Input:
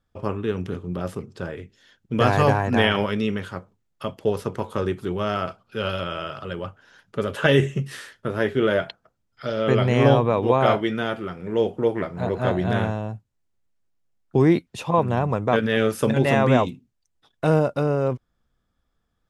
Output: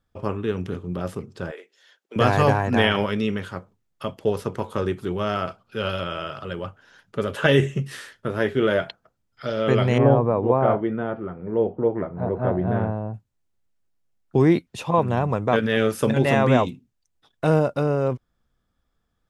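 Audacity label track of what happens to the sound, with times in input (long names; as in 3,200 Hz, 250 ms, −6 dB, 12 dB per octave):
1.510000	2.160000	high-pass filter 440 Hz 24 dB per octave
9.980000	13.140000	low-pass filter 1,100 Hz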